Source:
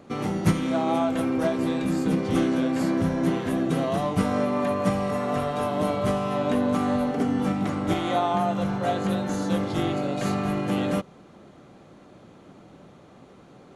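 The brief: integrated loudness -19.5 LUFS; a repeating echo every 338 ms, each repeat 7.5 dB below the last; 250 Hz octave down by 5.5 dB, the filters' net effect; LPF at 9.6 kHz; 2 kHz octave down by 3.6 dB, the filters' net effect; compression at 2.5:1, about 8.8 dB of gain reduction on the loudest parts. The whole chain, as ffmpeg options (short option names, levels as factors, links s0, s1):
-af "lowpass=9600,equalizer=f=250:t=o:g=-7,equalizer=f=2000:t=o:g=-4.5,acompressor=threshold=0.0282:ratio=2.5,aecho=1:1:338|676|1014|1352|1690:0.422|0.177|0.0744|0.0312|0.0131,volume=4.22"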